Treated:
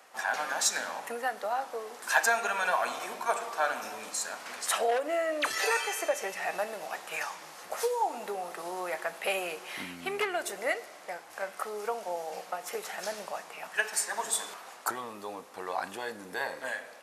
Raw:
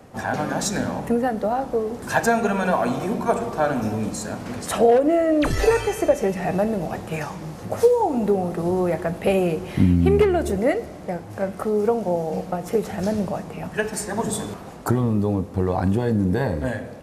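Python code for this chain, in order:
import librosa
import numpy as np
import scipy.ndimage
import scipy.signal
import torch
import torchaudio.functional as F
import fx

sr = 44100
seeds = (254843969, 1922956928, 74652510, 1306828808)

y = scipy.signal.sosfilt(scipy.signal.butter(2, 1100.0, 'highpass', fs=sr, output='sos'), x)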